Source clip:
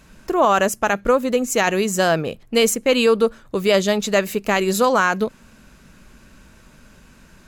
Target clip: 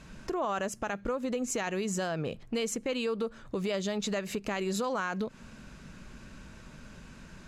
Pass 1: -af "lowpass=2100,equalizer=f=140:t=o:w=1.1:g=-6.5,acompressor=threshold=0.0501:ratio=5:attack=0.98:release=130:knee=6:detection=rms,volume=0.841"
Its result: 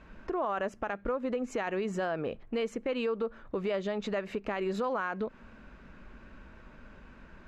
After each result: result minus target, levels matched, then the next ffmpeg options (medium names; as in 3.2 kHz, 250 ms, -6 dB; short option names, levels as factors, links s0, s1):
8 kHz band -16.0 dB; 125 Hz band -3.5 dB
-af "lowpass=7700,equalizer=f=140:t=o:w=1.1:g=-6.5,acompressor=threshold=0.0501:ratio=5:attack=0.98:release=130:knee=6:detection=rms,volume=0.841"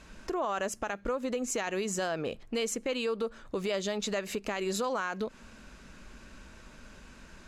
125 Hz band -5.0 dB
-af "lowpass=7700,equalizer=f=140:t=o:w=1.1:g=3.5,acompressor=threshold=0.0501:ratio=5:attack=0.98:release=130:knee=6:detection=rms,volume=0.841"